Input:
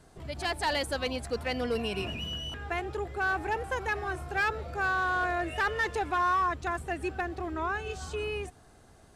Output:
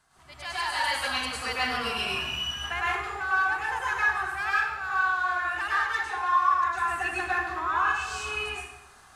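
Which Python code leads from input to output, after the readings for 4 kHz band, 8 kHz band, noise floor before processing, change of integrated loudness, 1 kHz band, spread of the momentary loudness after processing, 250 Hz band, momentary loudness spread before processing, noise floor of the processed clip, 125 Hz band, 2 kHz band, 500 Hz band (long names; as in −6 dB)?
+5.5 dB, +5.5 dB, −57 dBFS, +4.0 dB, +4.5 dB, 6 LU, −6.5 dB, 7 LU, −53 dBFS, −7.0 dB, +5.5 dB, −7.0 dB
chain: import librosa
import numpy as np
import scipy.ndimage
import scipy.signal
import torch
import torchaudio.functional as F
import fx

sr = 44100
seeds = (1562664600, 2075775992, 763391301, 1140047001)

y = fx.low_shelf_res(x, sr, hz=700.0, db=-13.0, q=1.5)
y = fx.rider(y, sr, range_db=5, speed_s=0.5)
y = fx.rev_plate(y, sr, seeds[0], rt60_s=0.87, hf_ratio=0.8, predelay_ms=90, drr_db=-7.5)
y = y * 10.0 ** (-4.5 / 20.0)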